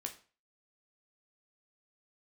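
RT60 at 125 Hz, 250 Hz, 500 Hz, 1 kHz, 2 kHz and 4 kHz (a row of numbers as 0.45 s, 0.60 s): 0.40 s, 0.40 s, 0.40 s, 0.40 s, 0.35 s, 0.35 s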